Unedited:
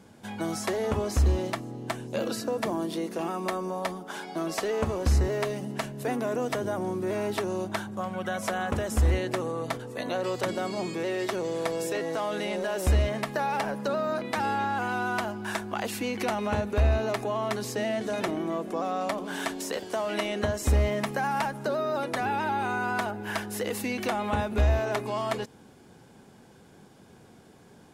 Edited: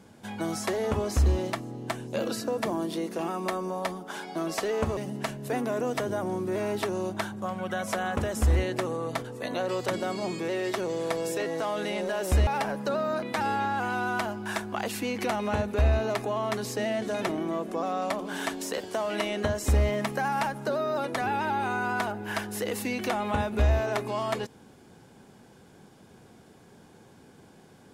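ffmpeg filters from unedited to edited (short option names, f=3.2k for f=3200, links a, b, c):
-filter_complex "[0:a]asplit=3[a][b][c];[a]atrim=end=4.972[d];[b]atrim=start=5.518:end=13.022[e];[c]atrim=start=13.458[f];[d][e]acrossfade=d=0.004:c1=hsin:c2=hsin[g];[g][f]acrossfade=d=0.004:c1=hsin:c2=hsin"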